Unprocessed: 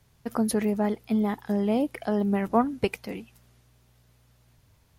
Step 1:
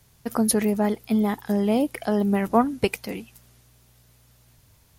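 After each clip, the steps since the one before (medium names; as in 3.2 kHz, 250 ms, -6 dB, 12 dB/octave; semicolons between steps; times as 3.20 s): treble shelf 5.1 kHz +8.5 dB; trim +3 dB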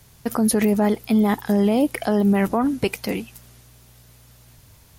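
peak limiter -17.5 dBFS, peak gain reduction 11.5 dB; trim +7 dB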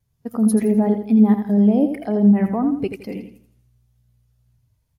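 wow and flutter 24 cents; feedback delay 83 ms, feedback 48%, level -6 dB; spectral contrast expander 1.5:1; trim +2 dB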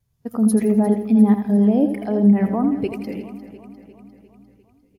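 feedback delay 351 ms, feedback 57%, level -15 dB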